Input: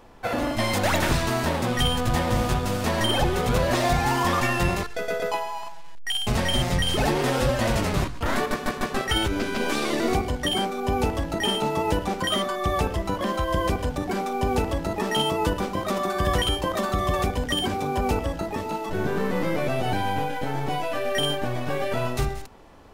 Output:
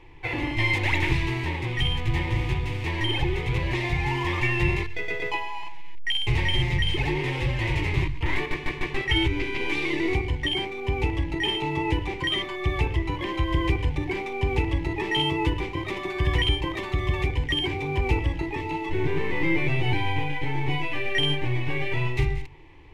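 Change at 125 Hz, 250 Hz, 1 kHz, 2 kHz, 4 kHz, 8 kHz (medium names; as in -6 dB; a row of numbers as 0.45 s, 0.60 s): +2.0 dB, -2.5 dB, -6.5 dB, +2.0 dB, -0.5 dB, -14.0 dB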